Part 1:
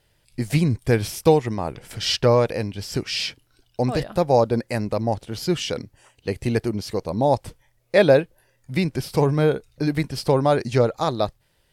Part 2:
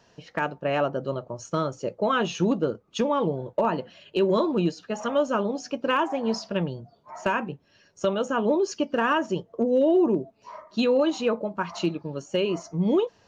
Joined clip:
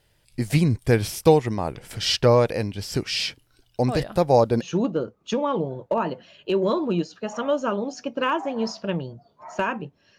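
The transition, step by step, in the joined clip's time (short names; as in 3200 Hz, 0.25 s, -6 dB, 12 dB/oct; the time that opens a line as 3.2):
part 1
4.65 switch to part 2 from 2.32 s, crossfade 0.12 s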